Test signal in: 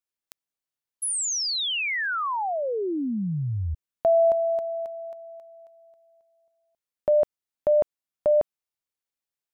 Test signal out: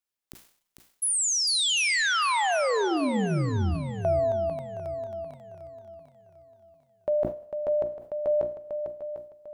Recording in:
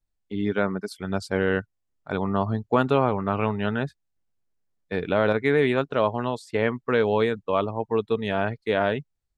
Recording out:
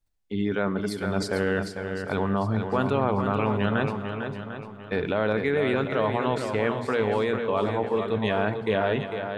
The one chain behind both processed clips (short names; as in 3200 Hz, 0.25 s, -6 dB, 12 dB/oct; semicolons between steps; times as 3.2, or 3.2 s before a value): notches 60/120/180/240/300/360 Hz; in parallel at +2 dB: negative-ratio compressor -27 dBFS, ratio -1; on the sum: swung echo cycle 0.748 s, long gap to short 1.5:1, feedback 31%, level -7 dB; Schroeder reverb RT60 1.2 s, combs from 33 ms, DRR 16 dB; sustainer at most 110 dB/s; gain -7 dB